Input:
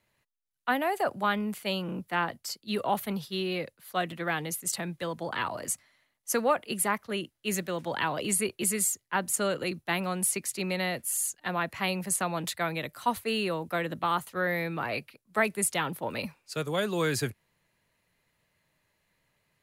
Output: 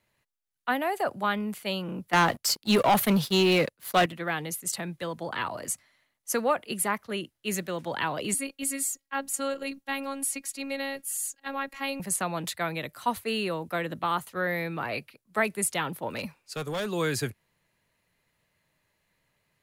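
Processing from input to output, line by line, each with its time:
2.13–4.06 sample leveller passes 3
8.34–12 robotiser 274 Hz
16.16–16.92 hard clip -27 dBFS

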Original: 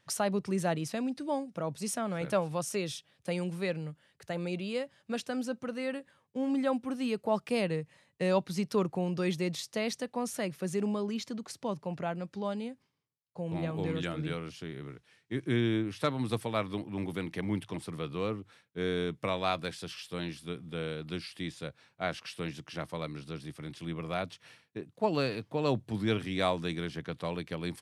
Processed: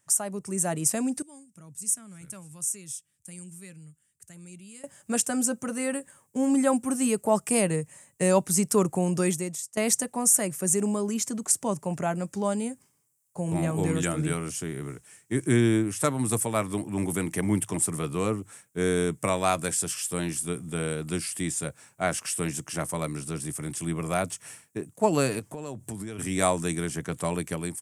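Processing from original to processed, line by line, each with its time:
1.22–4.84 passive tone stack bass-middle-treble 6-0-2
9.21–9.77 fade out quadratic, to -17.5 dB
25.39–26.19 compressor, threshold -40 dBFS
whole clip: resonant high shelf 5700 Hz +13 dB, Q 3; notch 500 Hz, Q 12; AGC gain up to 12 dB; gain -4.5 dB

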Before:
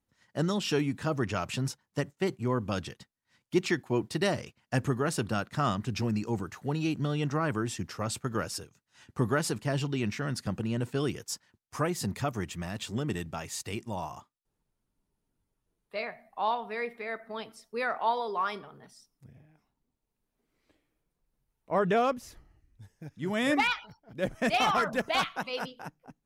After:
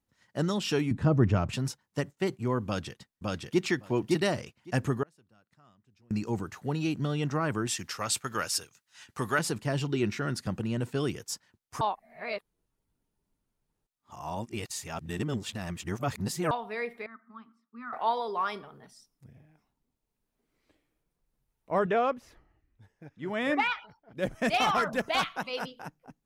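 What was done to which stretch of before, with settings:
0.91–1.53 tilt -3.5 dB/oct
2.65–3.63 echo throw 0.56 s, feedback 10%, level -1 dB
5.03–6.11 flipped gate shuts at -35 dBFS, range -33 dB
7.67–9.39 tilt shelf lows -7.5 dB, about 760 Hz
9.89–10.38 small resonant body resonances 360/1400/3900 Hz, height 8 dB
11.81–16.51 reverse
17.06–17.93 double band-pass 540 Hz, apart 2.3 oct
21.86–24.17 tone controls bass -7 dB, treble -13 dB

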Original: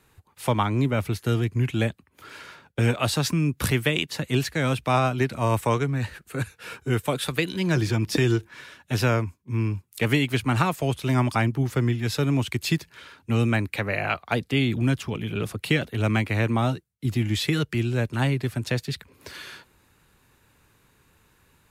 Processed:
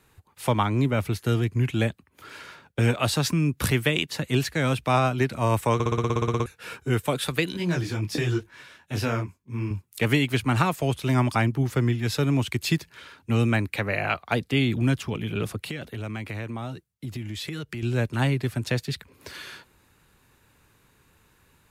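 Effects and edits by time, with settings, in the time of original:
5.74 stutter in place 0.06 s, 12 plays
7.57–9.71 detuned doubles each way 37 cents
15.59–17.83 compressor 4:1, threshold -31 dBFS

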